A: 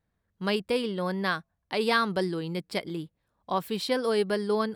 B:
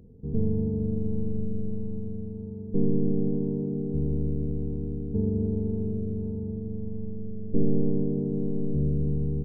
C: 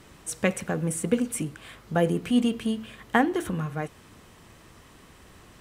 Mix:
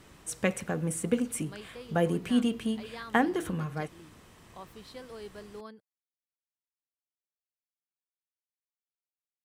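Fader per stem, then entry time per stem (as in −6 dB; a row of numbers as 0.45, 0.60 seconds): −18.5 dB, muted, −3.5 dB; 1.05 s, muted, 0.00 s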